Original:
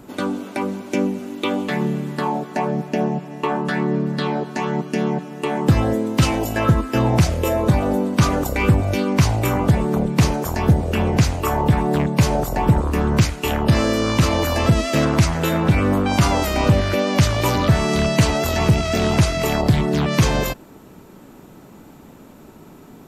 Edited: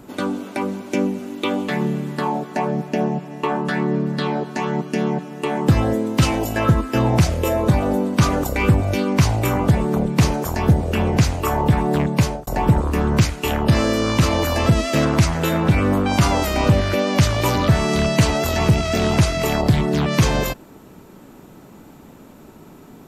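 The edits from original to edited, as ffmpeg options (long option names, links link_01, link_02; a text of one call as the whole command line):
ffmpeg -i in.wav -filter_complex "[0:a]asplit=2[link_01][link_02];[link_01]atrim=end=12.47,asetpts=PTS-STARTPTS,afade=type=out:start_time=12.17:duration=0.3[link_03];[link_02]atrim=start=12.47,asetpts=PTS-STARTPTS,afade=type=in:duration=0.004:curve=hsin[link_04];[link_03][link_04]concat=n=2:v=0:a=1" out.wav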